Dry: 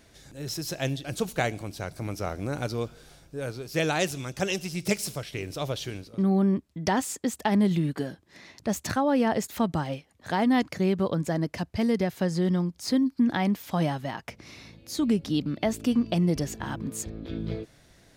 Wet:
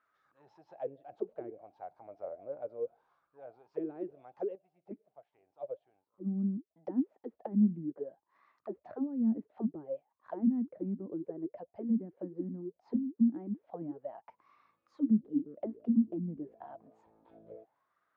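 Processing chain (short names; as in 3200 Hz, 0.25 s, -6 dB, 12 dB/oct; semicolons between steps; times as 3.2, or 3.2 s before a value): treble ducked by the level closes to 2000 Hz, closed at -25 dBFS; high shelf 4900 Hz -11.5 dB; auto-wah 220–1300 Hz, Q 12, down, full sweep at -20 dBFS; 4.55–6.71 upward expander 1.5:1, over -55 dBFS; gain +1.5 dB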